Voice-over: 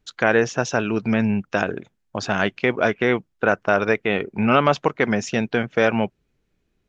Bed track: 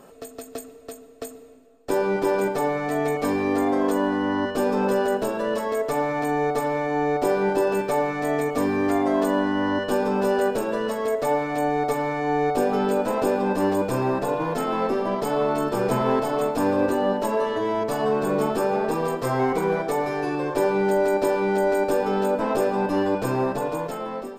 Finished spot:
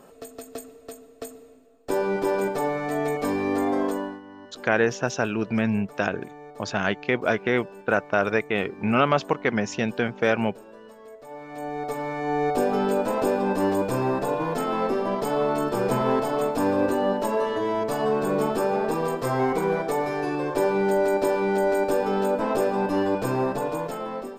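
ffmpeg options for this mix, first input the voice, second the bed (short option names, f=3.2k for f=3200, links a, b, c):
-filter_complex "[0:a]adelay=4450,volume=-3.5dB[a];[1:a]volume=17.5dB,afade=t=out:st=3.8:d=0.41:silence=0.11885,afade=t=in:st=11.28:d=1.26:silence=0.105925[b];[a][b]amix=inputs=2:normalize=0"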